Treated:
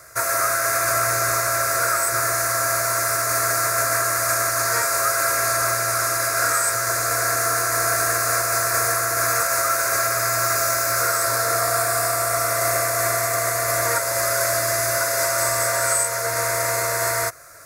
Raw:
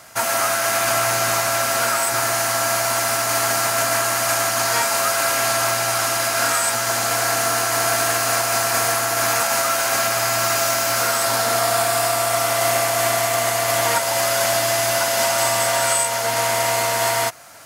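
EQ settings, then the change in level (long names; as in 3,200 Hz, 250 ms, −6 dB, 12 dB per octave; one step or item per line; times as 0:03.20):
low-shelf EQ 68 Hz +9.5 dB
phaser with its sweep stopped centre 830 Hz, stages 6
+1.0 dB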